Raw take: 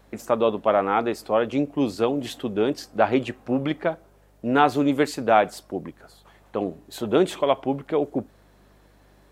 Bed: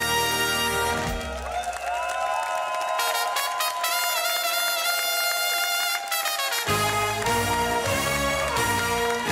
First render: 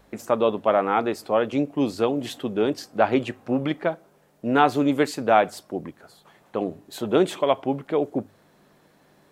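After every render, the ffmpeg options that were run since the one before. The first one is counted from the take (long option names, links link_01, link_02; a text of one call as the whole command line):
ffmpeg -i in.wav -af "bandreject=frequency=50:width_type=h:width=4,bandreject=frequency=100:width_type=h:width=4" out.wav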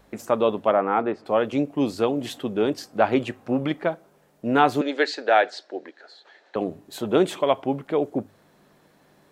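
ffmpeg -i in.wav -filter_complex "[0:a]asplit=3[link_01][link_02][link_03];[link_01]afade=type=out:start_time=0.71:duration=0.02[link_04];[link_02]highpass=110,lowpass=2000,afade=type=in:start_time=0.71:duration=0.02,afade=type=out:start_time=1.25:duration=0.02[link_05];[link_03]afade=type=in:start_time=1.25:duration=0.02[link_06];[link_04][link_05][link_06]amix=inputs=3:normalize=0,asettb=1/sr,asplit=3[link_07][link_08][link_09];[link_07]atrim=end=4.814[link_10];[link_08]atrim=start=4.81:end=6.56,asetpts=PTS-STARTPTS,afade=type=in:duration=0.004:curve=qsin,afade=type=out:start_time=1.746:duration=0.004:curve=qsin,highpass=frequency=350:width=0.5412,highpass=frequency=350:width=1.3066,equalizer=frequency=1100:width_type=q:width=4:gain=-9,equalizer=frequency=1700:width_type=q:width=4:gain=9,equalizer=frequency=4100:width_type=q:width=4:gain=9,lowpass=frequency=6200:width=0.5412,lowpass=frequency=6200:width=1.3066[link_11];[link_09]atrim=start=6.556[link_12];[link_10][link_11]acrossfade=duration=0.004:curve1=hsin:curve2=qsin[link_13];[link_13][link_12]acrossfade=duration=0.004:curve1=qsin:curve2=hsin" out.wav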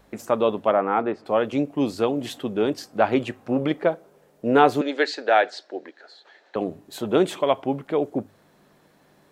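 ffmpeg -i in.wav -filter_complex "[0:a]asettb=1/sr,asplit=3[link_01][link_02][link_03];[link_01]atrim=end=3.564[link_04];[link_02]atrim=start=3.56:end=4.74,asetpts=PTS-STARTPTS,afade=type=in:duration=0.004:curve=qsin,afade=type=out:start_time=1.176:duration=0.004:curve=qsin,equalizer=frequency=460:width_type=o:width=0.69:gain=7[link_05];[link_03]atrim=start=4.736[link_06];[link_04][link_05]acrossfade=duration=0.004:curve1=hsin:curve2=qsin[link_07];[link_07][link_06]acrossfade=duration=0.004:curve1=qsin:curve2=hsin" out.wav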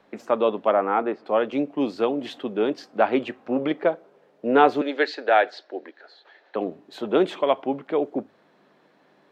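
ffmpeg -i in.wav -filter_complex "[0:a]acrossover=split=180 4700:gain=0.0794 1 0.112[link_01][link_02][link_03];[link_01][link_02][link_03]amix=inputs=3:normalize=0" out.wav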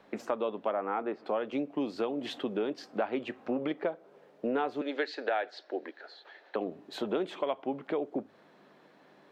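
ffmpeg -i in.wav -af "acompressor=threshold=-30dB:ratio=4" out.wav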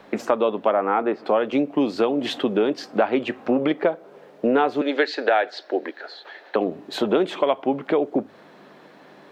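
ffmpeg -i in.wav -af "volume=11.5dB" out.wav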